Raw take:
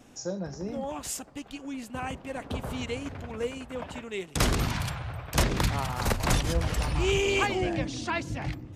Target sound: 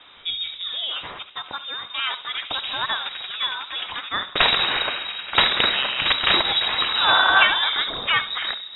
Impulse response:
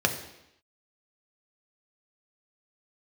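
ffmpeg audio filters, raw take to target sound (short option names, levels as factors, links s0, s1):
-filter_complex "[0:a]crystalizer=i=9.5:c=0,asplit=2[s0][s1];[1:a]atrim=start_sample=2205,adelay=67[s2];[s1][s2]afir=irnorm=-1:irlink=0,volume=0.0596[s3];[s0][s3]amix=inputs=2:normalize=0,lowpass=f=3300:t=q:w=0.5098,lowpass=f=3300:t=q:w=0.6013,lowpass=f=3300:t=q:w=0.9,lowpass=f=3300:t=q:w=2.563,afreqshift=-3900,volume=1.41"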